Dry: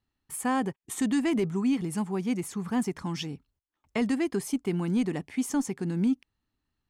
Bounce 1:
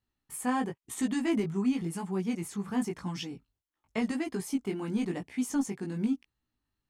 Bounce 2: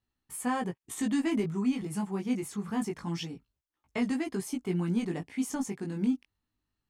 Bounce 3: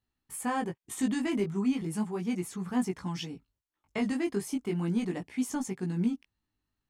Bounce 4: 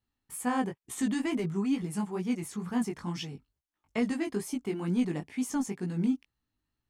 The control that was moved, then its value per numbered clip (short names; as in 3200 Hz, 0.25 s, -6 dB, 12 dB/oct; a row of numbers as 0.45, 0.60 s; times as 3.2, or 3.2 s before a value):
chorus, rate: 0.94, 0.24, 0.36, 2.2 Hz